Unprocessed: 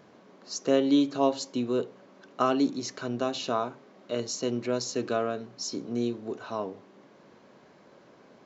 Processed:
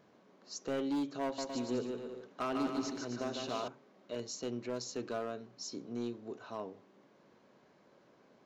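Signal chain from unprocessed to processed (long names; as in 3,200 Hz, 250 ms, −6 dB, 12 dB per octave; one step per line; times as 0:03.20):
gain into a clipping stage and back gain 21.5 dB
0:01.23–0:03.68: bouncing-ball delay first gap 150 ms, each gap 0.75×, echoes 5
level −9 dB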